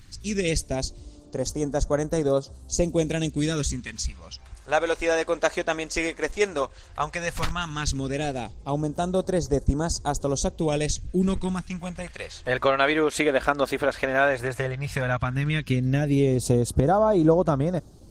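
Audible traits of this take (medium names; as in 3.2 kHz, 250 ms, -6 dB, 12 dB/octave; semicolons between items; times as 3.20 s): phasing stages 2, 0.13 Hz, lowest notch 120–2400 Hz; Opus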